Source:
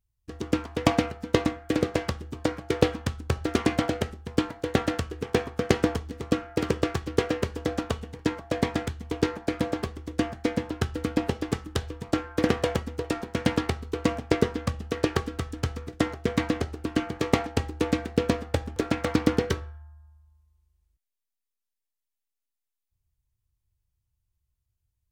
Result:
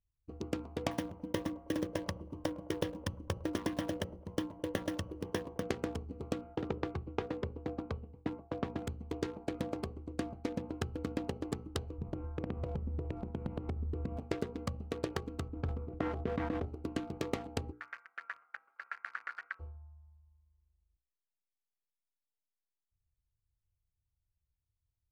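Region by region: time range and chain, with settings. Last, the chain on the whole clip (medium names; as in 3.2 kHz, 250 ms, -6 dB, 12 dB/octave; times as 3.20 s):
0.91–5.63 s: block-companded coder 5-bit + rippled EQ curve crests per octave 1.2, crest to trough 9 dB + feedback echo behind a band-pass 106 ms, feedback 46%, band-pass 890 Hz, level -16 dB
6.55–8.82 s: self-modulated delay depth 0.4 ms + distance through air 220 m + three bands expanded up and down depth 70%
11.98–14.17 s: tone controls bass +12 dB, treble -15 dB + compression 5:1, threshold -26 dBFS
15.48–16.66 s: low-pass 1.9 kHz + decay stretcher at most 65 dB/s
17.71–19.59 s: spectral peaks clipped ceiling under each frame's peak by 14 dB + Butterworth band-pass 1.6 kHz, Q 2.8
whole clip: local Wiener filter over 25 samples; hum notches 60/120/180/240/300/360/420/480/540 Hz; compression, threshold -25 dBFS; trim -6 dB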